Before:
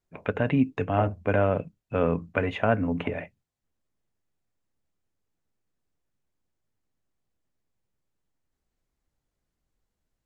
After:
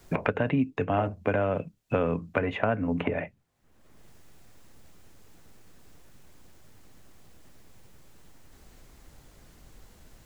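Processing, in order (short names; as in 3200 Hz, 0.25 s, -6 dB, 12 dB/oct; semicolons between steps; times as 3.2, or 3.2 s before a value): three-band squash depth 100%; gain -2 dB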